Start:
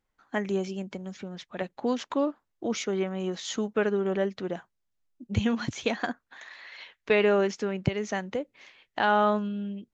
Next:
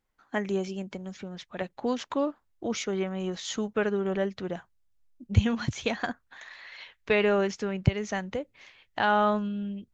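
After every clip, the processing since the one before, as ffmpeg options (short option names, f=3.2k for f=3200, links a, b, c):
-af "asubboost=boost=3.5:cutoff=130"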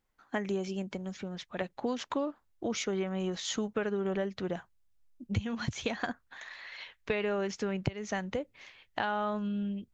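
-af "acompressor=threshold=-28dB:ratio=8"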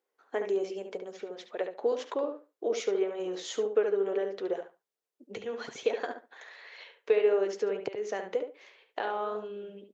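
-filter_complex "[0:a]flanger=delay=2.6:depth=6:regen=-71:speed=1.9:shape=sinusoidal,highpass=f=440:t=q:w=4.7,asplit=2[a][b];[b]adelay=71,lowpass=f=2.7k:p=1,volume=-6.5dB,asplit=2[c][d];[d]adelay=71,lowpass=f=2.7k:p=1,volume=0.18,asplit=2[e][f];[f]adelay=71,lowpass=f=2.7k:p=1,volume=0.18[g];[a][c][e][g]amix=inputs=4:normalize=0"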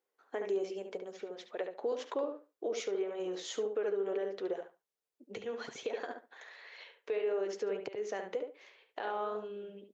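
-af "alimiter=limit=-23dB:level=0:latency=1:release=96,volume=-3dB"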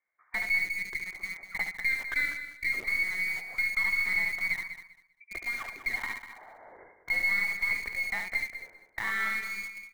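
-filter_complex "[0:a]lowpass=f=2.2k:t=q:w=0.5098,lowpass=f=2.2k:t=q:w=0.6013,lowpass=f=2.2k:t=q:w=0.9,lowpass=f=2.2k:t=q:w=2.563,afreqshift=-2600,asplit=2[a][b];[b]acrusher=bits=4:dc=4:mix=0:aa=0.000001,volume=-4dB[c];[a][c]amix=inputs=2:normalize=0,aecho=1:1:197|394|591:0.282|0.0564|0.0113,volume=2.5dB"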